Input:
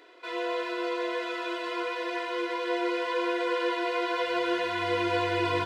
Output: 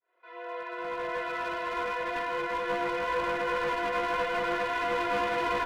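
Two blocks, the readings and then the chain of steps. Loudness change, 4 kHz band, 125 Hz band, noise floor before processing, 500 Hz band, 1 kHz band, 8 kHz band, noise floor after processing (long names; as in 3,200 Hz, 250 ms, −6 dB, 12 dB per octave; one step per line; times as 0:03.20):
−1.0 dB, −5.0 dB, can't be measured, −37 dBFS, −2.5 dB, +1.5 dB, −1.0 dB, −48 dBFS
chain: fade in at the beginning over 1.40 s
three-way crossover with the lows and the highs turned down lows −21 dB, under 470 Hz, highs −21 dB, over 2,300 Hz
asymmetric clip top −36 dBFS
level +5 dB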